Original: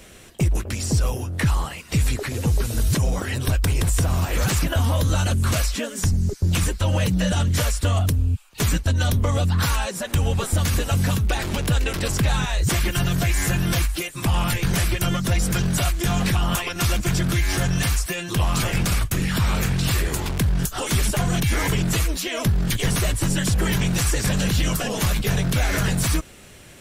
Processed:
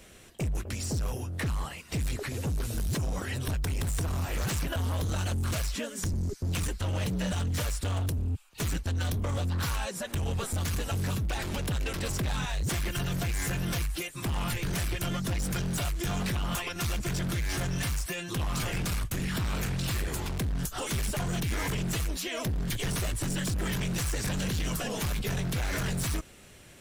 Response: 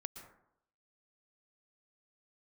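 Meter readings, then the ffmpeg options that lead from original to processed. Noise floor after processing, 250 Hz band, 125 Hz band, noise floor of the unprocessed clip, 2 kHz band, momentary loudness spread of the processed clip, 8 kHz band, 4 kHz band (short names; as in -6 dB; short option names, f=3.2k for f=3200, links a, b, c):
-50 dBFS, -9.0 dB, -9.5 dB, -43 dBFS, -9.0 dB, 3 LU, -9.0 dB, -9.0 dB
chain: -af "asoftclip=type=hard:threshold=-20dB,volume=-7dB"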